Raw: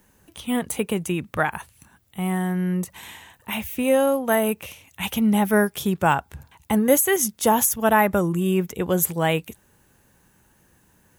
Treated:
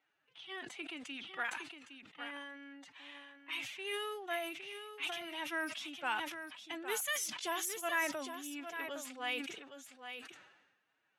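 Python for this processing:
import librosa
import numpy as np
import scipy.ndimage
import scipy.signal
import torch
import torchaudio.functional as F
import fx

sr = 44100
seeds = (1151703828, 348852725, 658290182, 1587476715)

p1 = fx.bandpass_q(x, sr, hz=3100.0, q=0.88)
p2 = fx.env_lowpass(p1, sr, base_hz=2600.0, full_db=-25.0)
p3 = fx.pitch_keep_formants(p2, sr, semitones=7.5)
p4 = p3 + fx.echo_single(p3, sr, ms=812, db=-9.0, dry=0)
p5 = fx.sustainer(p4, sr, db_per_s=52.0)
y = p5 * 10.0 ** (-8.0 / 20.0)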